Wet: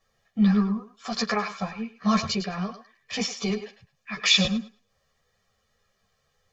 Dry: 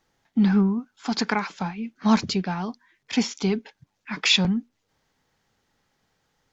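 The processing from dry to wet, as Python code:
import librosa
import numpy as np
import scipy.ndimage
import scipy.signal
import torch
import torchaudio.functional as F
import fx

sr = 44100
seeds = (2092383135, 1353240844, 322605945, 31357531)

y = x + 0.9 * np.pad(x, (int(1.7 * sr / 1000.0), 0))[:len(x)]
y = fx.echo_thinned(y, sr, ms=105, feedback_pct=20, hz=480.0, wet_db=-10)
y = fx.ensemble(y, sr)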